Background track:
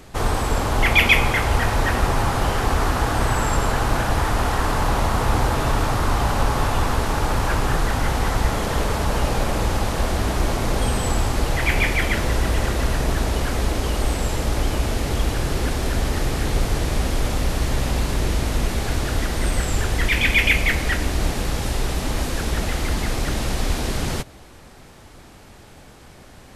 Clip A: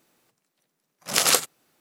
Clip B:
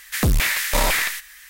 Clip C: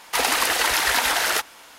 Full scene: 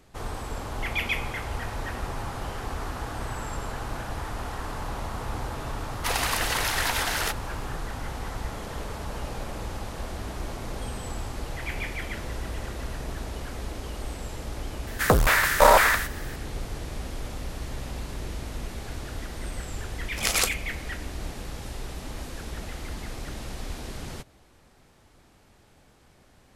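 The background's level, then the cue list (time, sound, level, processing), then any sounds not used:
background track -13 dB
5.91 add C -6.5 dB
14.87 add B -4 dB + band shelf 800 Hz +12.5 dB 2.3 oct
19.09 add A -5.5 dB

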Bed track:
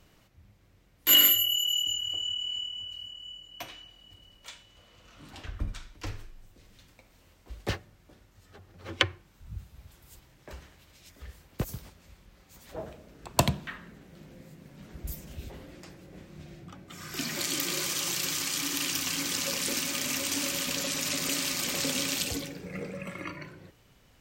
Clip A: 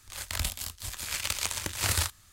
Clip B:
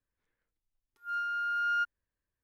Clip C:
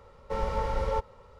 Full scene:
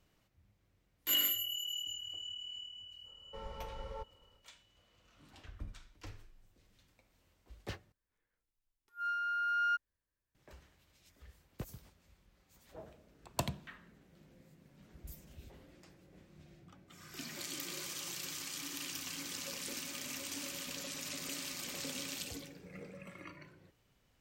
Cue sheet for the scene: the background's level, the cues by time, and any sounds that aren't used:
bed track -12 dB
3.03 add C -16 dB, fades 0.05 s
7.92 replace with B -2.5 dB
not used: A

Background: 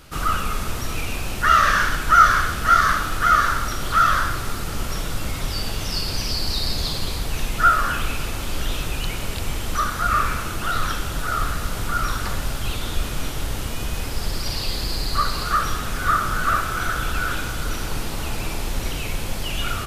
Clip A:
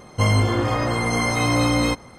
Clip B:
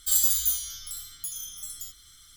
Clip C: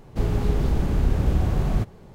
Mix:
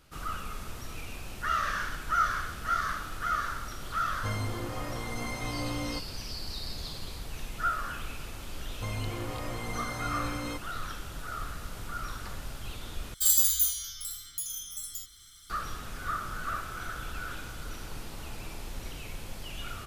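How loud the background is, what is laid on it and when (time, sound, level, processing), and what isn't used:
background -14 dB
4.05 add A -15.5 dB
8.63 add A -15.5 dB + limiter -11.5 dBFS
13.14 replace with B -0.5 dB
not used: C

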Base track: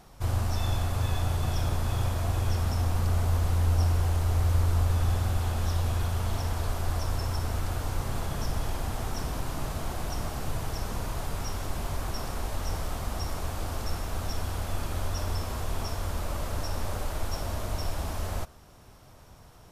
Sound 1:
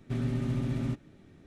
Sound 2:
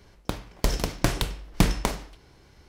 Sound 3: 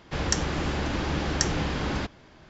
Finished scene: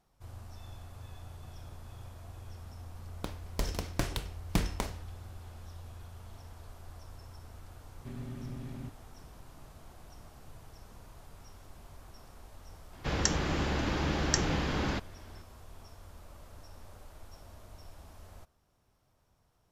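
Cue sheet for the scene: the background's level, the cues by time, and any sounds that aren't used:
base track -19.5 dB
2.95 add 2 -9 dB
7.95 add 1 -11.5 dB
12.93 add 3 -3 dB

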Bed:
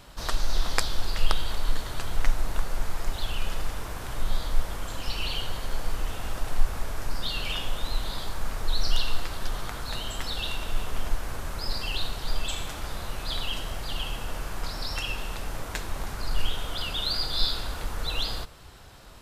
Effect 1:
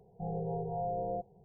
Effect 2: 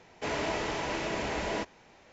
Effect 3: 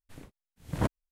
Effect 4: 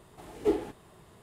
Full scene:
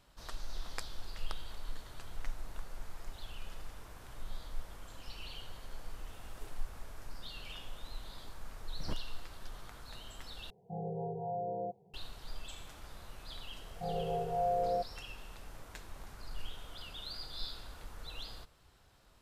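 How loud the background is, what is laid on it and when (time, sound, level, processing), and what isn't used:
bed -16 dB
5.95 add 4 -10 dB + differentiator
8.07 add 3 -15 dB
10.5 replace with 1 -2.5 dB + HPF 110 Hz
13.61 add 1 -5 dB + bell 610 Hz +13 dB 0.65 oct
not used: 2

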